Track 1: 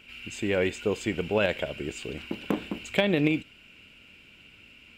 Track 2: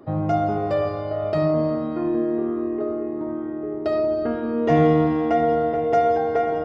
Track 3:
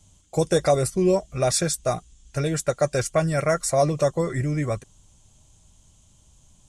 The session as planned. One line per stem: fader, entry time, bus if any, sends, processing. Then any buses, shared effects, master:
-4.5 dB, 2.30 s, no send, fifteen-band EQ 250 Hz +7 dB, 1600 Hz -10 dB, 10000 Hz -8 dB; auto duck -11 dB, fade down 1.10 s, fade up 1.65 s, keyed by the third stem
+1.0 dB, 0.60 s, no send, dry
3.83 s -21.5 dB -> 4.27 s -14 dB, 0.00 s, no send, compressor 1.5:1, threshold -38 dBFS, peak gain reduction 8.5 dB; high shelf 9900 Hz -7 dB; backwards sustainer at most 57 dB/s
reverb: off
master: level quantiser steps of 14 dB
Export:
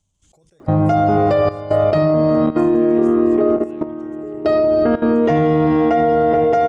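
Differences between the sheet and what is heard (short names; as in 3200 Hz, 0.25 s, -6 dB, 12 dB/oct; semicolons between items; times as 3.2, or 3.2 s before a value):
stem 1: missing fifteen-band EQ 250 Hz +7 dB, 1600 Hz -10 dB, 10000 Hz -8 dB; stem 2 +1.0 dB -> +12.5 dB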